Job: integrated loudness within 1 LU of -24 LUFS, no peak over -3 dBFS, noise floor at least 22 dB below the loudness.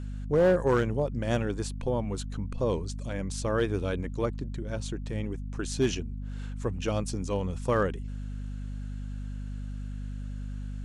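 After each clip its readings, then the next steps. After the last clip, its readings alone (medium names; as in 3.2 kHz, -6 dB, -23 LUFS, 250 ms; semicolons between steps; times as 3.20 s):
clipped samples 0.4%; clipping level -17.0 dBFS; hum 50 Hz; highest harmonic 250 Hz; hum level -34 dBFS; loudness -31.0 LUFS; peak level -17.0 dBFS; loudness target -24.0 LUFS
-> clip repair -17 dBFS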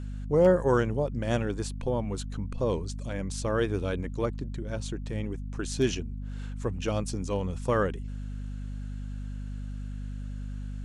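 clipped samples 0.0%; hum 50 Hz; highest harmonic 250 Hz; hum level -33 dBFS
-> de-hum 50 Hz, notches 5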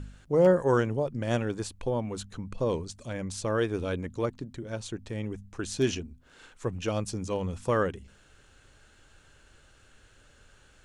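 hum not found; loudness -30.0 LUFS; peak level -11.5 dBFS; loudness target -24.0 LUFS
-> trim +6 dB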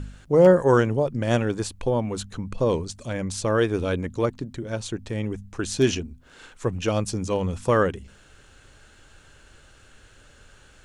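loudness -24.0 LUFS; peak level -5.0 dBFS; noise floor -53 dBFS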